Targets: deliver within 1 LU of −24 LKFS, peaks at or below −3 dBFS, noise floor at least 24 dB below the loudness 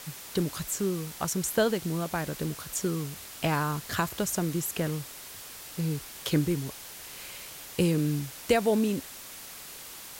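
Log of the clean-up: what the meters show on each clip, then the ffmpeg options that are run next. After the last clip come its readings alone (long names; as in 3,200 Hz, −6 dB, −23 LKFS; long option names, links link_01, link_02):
background noise floor −44 dBFS; target noise floor −54 dBFS; integrated loudness −30.0 LKFS; sample peak −12.5 dBFS; target loudness −24.0 LKFS
→ -af "afftdn=noise_reduction=10:noise_floor=-44"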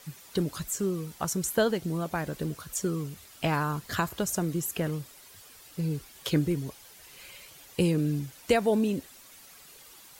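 background noise floor −52 dBFS; target noise floor −54 dBFS
→ -af "afftdn=noise_reduction=6:noise_floor=-52"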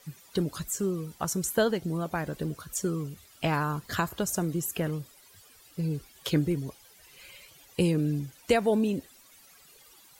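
background noise floor −57 dBFS; integrated loudness −30.0 LKFS; sample peak −12.5 dBFS; target loudness −24.0 LKFS
→ -af "volume=6dB"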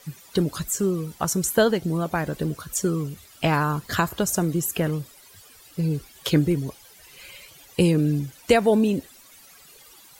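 integrated loudness −24.0 LKFS; sample peak −6.5 dBFS; background noise floor −51 dBFS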